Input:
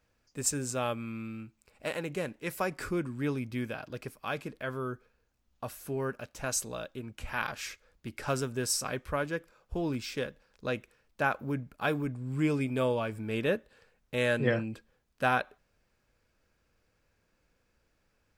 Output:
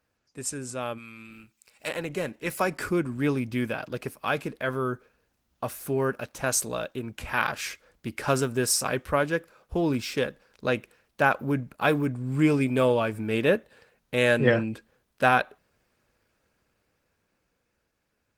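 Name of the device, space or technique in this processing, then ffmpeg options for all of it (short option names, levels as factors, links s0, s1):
video call: -filter_complex "[0:a]asplit=3[s0][s1][s2];[s0]afade=t=out:st=0.97:d=0.02[s3];[s1]tiltshelf=f=1500:g=-8,afade=t=in:st=0.97:d=0.02,afade=t=out:st=1.87:d=0.02[s4];[s2]afade=t=in:st=1.87:d=0.02[s5];[s3][s4][s5]amix=inputs=3:normalize=0,highpass=f=100:p=1,dynaudnorm=f=360:g=13:m=2.51" -ar 48000 -c:a libopus -b:a 24k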